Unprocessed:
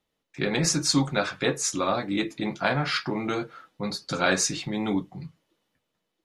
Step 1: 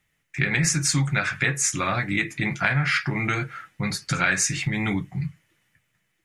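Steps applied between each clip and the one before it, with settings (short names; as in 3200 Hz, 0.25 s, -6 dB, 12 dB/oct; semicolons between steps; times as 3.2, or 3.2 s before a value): graphic EQ 125/250/500/1000/2000/4000/8000 Hz +8/-8/-10/-7/+11/-10/+4 dB; compressor 2.5:1, threshold -30 dBFS, peak gain reduction 9 dB; gain +8.5 dB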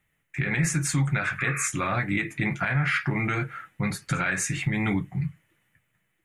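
bell 5100 Hz -12 dB 0.93 oct; limiter -15 dBFS, peak gain reduction 8.5 dB; painted sound noise, 1.38–1.68, 1100–2600 Hz -33 dBFS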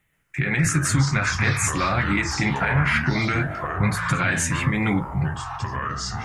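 echoes that change speed 0.134 s, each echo -5 st, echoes 3, each echo -6 dB; gain +3.5 dB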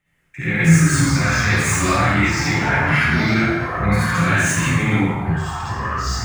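median filter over 3 samples; flange 0.42 Hz, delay 6.6 ms, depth 9.3 ms, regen +52%; reverb RT60 0.90 s, pre-delay 43 ms, DRR -9.5 dB; gain -1 dB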